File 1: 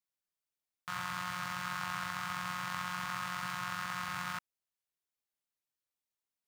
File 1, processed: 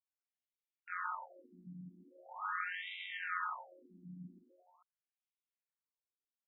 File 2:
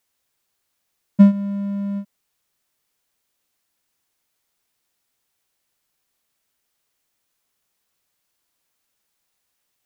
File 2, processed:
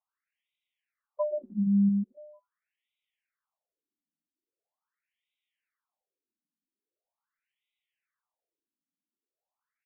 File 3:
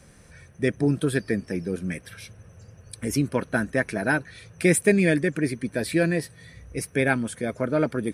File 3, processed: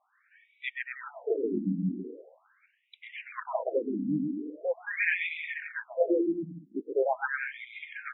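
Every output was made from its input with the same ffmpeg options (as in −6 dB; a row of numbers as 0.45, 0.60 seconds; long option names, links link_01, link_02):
-af "aecho=1:1:130|234|317.2|383.8|437:0.631|0.398|0.251|0.158|0.1,agate=range=-7dB:threshold=-41dB:ratio=16:detection=peak,afftfilt=real='re*between(b*sr/1024,230*pow(2800/230,0.5+0.5*sin(2*PI*0.42*pts/sr))/1.41,230*pow(2800/230,0.5+0.5*sin(2*PI*0.42*pts/sr))*1.41)':imag='im*between(b*sr/1024,230*pow(2800/230,0.5+0.5*sin(2*PI*0.42*pts/sr))/1.41,230*pow(2800/230,0.5+0.5*sin(2*PI*0.42*pts/sr))*1.41)':win_size=1024:overlap=0.75"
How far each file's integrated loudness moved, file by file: −4.0, −8.5, −7.0 LU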